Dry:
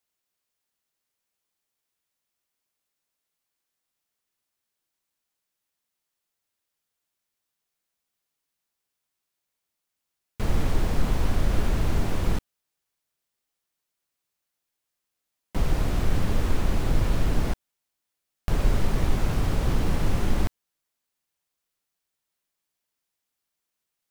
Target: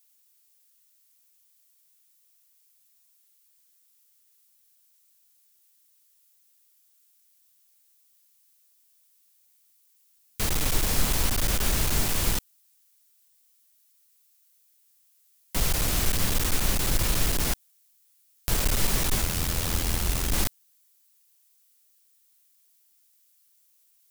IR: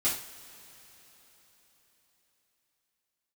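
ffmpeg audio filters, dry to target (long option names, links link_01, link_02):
-filter_complex "[0:a]asettb=1/sr,asplit=3[link_01][link_02][link_03];[link_01]atrim=end=19.214[link_04];[link_02]atrim=start=19.21:end=20.34,asetpts=PTS-STARTPTS,afade=type=in:duration=0.004:curve=qsin,afade=type=out:start_time=1.126:duration=0.004:curve=qsin,aeval=exprs='val(0)*sin(2*PI*42*n/s)':channel_layout=same[link_05];[link_03]atrim=start=20.336[link_06];[link_04][link_05]acrossfade=duration=0.004:curve1=hsin:curve2=qsin[link_07];[link_07][link_06]acrossfade=duration=0.004:curve1=qsin:curve2=hsin,aeval=exprs='clip(val(0),-1,0.112)':channel_layout=same,crystalizer=i=8.5:c=0,volume=-3dB"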